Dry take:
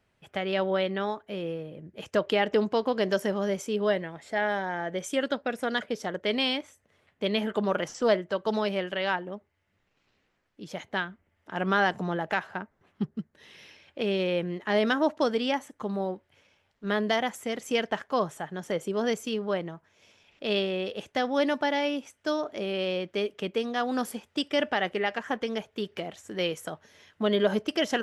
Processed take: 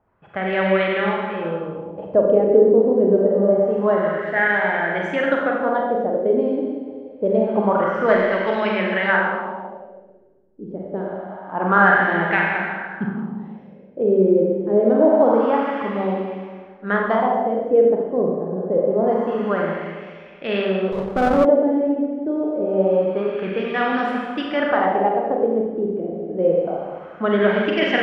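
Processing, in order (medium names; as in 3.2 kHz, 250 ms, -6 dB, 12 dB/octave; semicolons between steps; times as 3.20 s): Schroeder reverb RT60 1.8 s, combs from 32 ms, DRR -2.5 dB; LFO low-pass sine 0.26 Hz 390–2200 Hz; 20.92–21.45 s: sliding maximum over 17 samples; trim +3 dB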